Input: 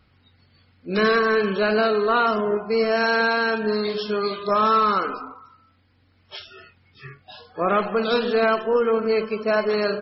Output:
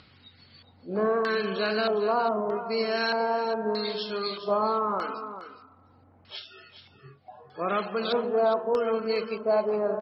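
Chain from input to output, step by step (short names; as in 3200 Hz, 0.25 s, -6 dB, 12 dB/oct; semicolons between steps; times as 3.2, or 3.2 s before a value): HPF 92 Hz; upward compressor, threshold -39 dBFS; LFO low-pass square 0.8 Hz 820–4300 Hz; on a send: echo 0.41 s -11.5 dB; on the sum: gain -7.5 dB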